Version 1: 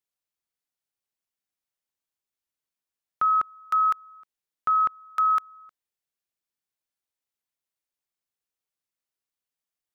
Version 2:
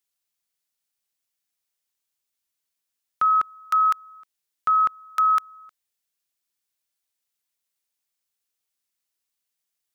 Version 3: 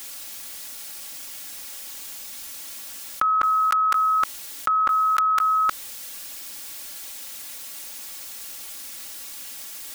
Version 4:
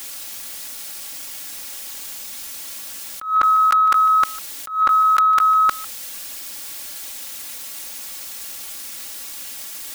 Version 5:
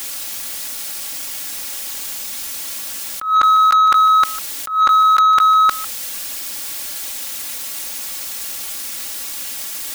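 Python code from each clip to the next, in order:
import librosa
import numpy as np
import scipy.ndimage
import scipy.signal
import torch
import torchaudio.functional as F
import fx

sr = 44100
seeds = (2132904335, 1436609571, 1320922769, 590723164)

y1 = fx.high_shelf(x, sr, hz=2100.0, db=9.0)
y2 = y1 + 0.78 * np.pad(y1, (int(3.6 * sr / 1000.0), 0))[:len(y1)]
y2 = fx.env_flatten(y2, sr, amount_pct=100)
y2 = y2 * librosa.db_to_amplitude(2.5)
y3 = fx.leveller(y2, sr, passes=1)
y3 = y3 + 10.0 ** (-19.5 / 20.0) * np.pad(y3, (int(150 * sr / 1000.0), 0))[:len(y3)]
y3 = fx.attack_slew(y3, sr, db_per_s=130.0)
y3 = y3 * librosa.db_to_amplitude(1.0)
y4 = 10.0 ** (-14.0 / 20.0) * np.tanh(y3 / 10.0 ** (-14.0 / 20.0))
y4 = y4 * librosa.db_to_amplitude(6.0)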